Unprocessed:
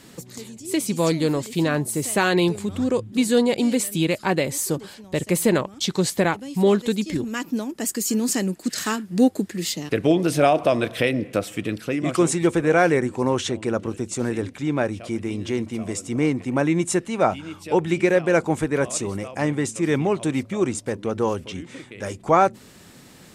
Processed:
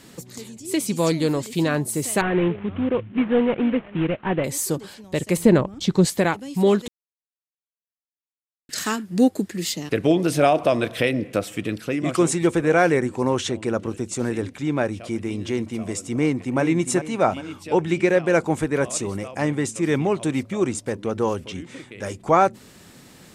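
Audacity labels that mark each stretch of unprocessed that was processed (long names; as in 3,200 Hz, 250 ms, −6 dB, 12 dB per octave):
2.210000	4.440000	variable-slope delta modulation 16 kbit/s
5.370000	6.050000	spectral tilt −2.5 dB per octave
6.880000	8.690000	silence
16.160000	16.610000	delay throw 400 ms, feedback 45%, level −9 dB
17.630000	18.270000	parametric band 13,000 Hz −6 dB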